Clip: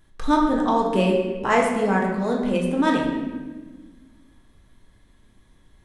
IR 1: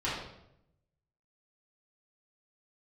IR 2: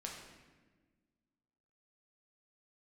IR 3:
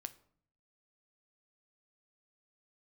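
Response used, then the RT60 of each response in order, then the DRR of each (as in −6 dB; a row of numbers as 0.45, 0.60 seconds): 2; 0.80, 1.4, 0.60 seconds; −10.5, −1.5, 10.5 decibels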